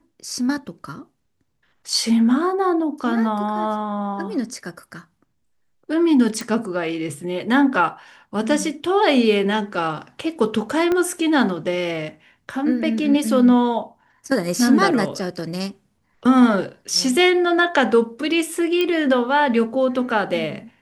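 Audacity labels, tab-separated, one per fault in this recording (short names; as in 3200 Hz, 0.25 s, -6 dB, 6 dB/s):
6.410000	6.410000	pop
10.920000	10.920000	pop -10 dBFS
18.810000	18.810000	pop -9 dBFS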